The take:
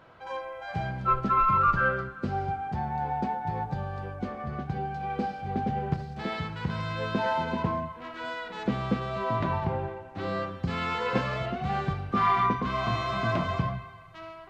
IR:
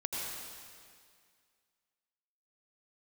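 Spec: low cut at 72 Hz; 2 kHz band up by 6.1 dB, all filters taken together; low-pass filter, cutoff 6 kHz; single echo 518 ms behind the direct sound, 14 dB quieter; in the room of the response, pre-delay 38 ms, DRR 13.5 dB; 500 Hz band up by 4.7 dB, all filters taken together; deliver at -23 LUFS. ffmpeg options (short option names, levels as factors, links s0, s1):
-filter_complex "[0:a]highpass=72,lowpass=6000,equalizer=f=500:t=o:g=5.5,equalizer=f=2000:t=o:g=8,aecho=1:1:518:0.2,asplit=2[s0][s1];[1:a]atrim=start_sample=2205,adelay=38[s2];[s1][s2]afir=irnorm=-1:irlink=0,volume=0.133[s3];[s0][s3]amix=inputs=2:normalize=0,volume=1.41"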